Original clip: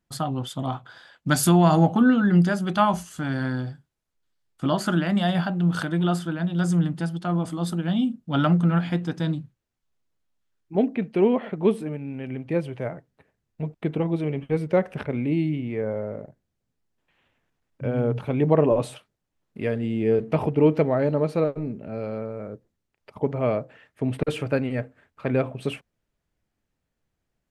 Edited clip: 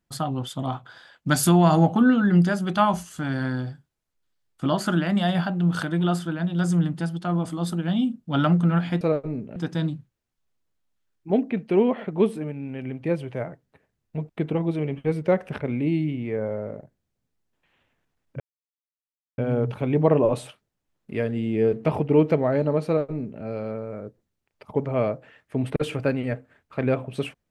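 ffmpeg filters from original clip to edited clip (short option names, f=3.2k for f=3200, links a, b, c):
-filter_complex "[0:a]asplit=4[a][b][c][d];[a]atrim=end=9.012[e];[b]atrim=start=21.328:end=21.882[f];[c]atrim=start=9.008:end=17.85,asetpts=PTS-STARTPTS,afade=t=out:st=8.838:d=0.004:c=hsin,apad=pad_dur=0.98[g];[d]atrim=start=17.85,asetpts=PTS-STARTPTS,afade=t=in:d=0.004:c=hsin[h];[e][f]acrossfade=d=0.004:c1=hsin:c2=hsin[i];[g][h]concat=n=2:v=0:a=1[j];[i][j]acrossfade=d=0.004:c1=hsin:c2=hsin"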